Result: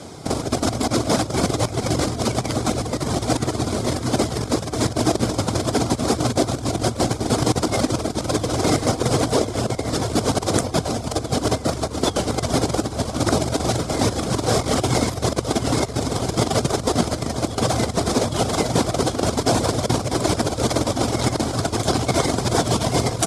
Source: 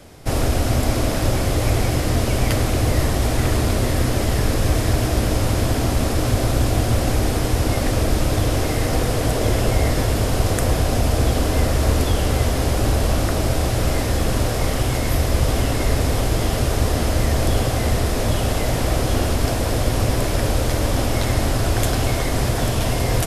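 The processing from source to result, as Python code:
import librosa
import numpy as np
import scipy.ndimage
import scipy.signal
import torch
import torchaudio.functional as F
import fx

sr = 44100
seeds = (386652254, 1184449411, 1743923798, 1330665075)

y = fx.dereverb_blind(x, sr, rt60_s=0.58)
y = fx.over_compress(y, sr, threshold_db=-23.0, ratio=-0.5)
y = fx.cabinet(y, sr, low_hz=120.0, low_slope=12, high_hz=9400.0, hz=(550.0, 1800.0, 2700.0), db=(-3, -9, -9))
y = y * librosa.db_to_amplitude(6.0)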